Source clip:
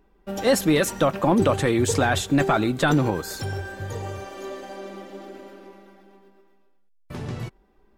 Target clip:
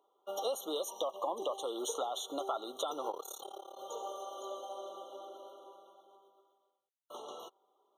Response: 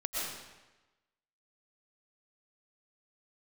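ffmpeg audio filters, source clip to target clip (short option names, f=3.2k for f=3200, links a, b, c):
-filter_complex "[0:a]highpass=f=480:w=0.5412,highpass=f=480:w=1.3066,acompressor=threshold=-28dB:ratio=6,asettb=1/sr,asplit=3[a][b][c];[a]atrim=end=0.814[d];[b]atrim=start=0.81:end=1.64,asetpts=PTS-STARTPTS,afade=t=in:d=0.004:c=qsin,afade=t=out:st=0.826:d=0.004:c=qsin,asuperstop=centerf=1600:order=12:qfactor=1.7[e];[c]atrim=start=1.636[f];[d][e]acrossfade=d=0.004:c1=hsin:c2=qsin[g];[g][f]acrossfade=d=0.004:c1=qsin:c2=hsin,asplit=3[h][i][j];[h]afade=t=out:st=3.1:d=0.02[k];[i]tremolo=f=35:d=0.947,afade=t=in:st=3.1:d=0.02,afade=t=out:st=3.77:d=0.02[l];[j]afade=t=in:st=3.77:d=0.02[m];[k][l][m]amix=inputs=3:normalize=0,afftfilt=real='re*eq(mod(floor(b*sr/1024/1400),2),0)':imag='im*eq(mod(floor(b*sr/1024/1400),2),0)':win_size=1024:overlap=0.75,volume=-4dB"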